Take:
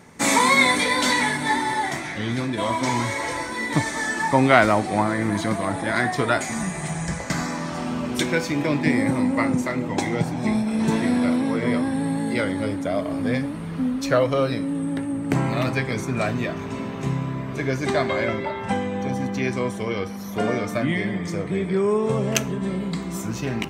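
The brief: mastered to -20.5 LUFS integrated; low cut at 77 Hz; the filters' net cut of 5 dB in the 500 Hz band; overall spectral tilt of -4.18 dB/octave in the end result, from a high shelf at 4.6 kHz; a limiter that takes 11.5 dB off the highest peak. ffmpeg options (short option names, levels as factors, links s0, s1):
-af "highpass=77,equalizer=f=500:t=o:g=-6.5,highshelf=f=4600:g=5.5,volume=1.68,alimiter=limit=0.447:level=0:latency=1"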